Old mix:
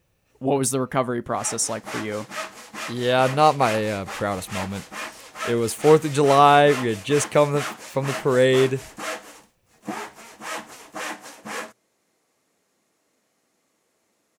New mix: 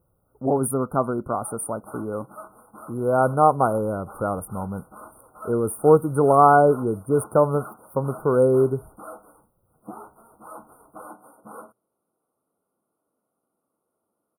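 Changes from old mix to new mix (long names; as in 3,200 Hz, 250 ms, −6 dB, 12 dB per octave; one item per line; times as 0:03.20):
background −7.0 dB
master: add linear-phase brick-wall band-stop 1,500–8,800 Hz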